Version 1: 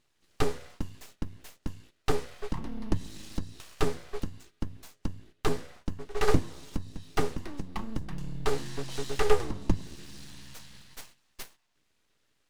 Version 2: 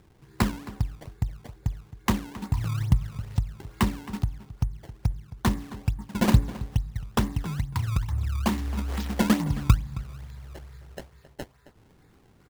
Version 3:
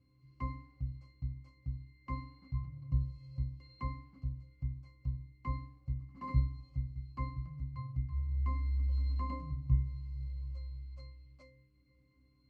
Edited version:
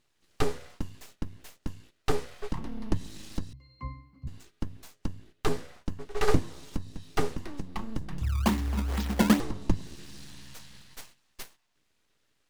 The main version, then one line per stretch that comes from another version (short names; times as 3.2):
1
3.53–4.27 from 3
8.22–9.4 from 2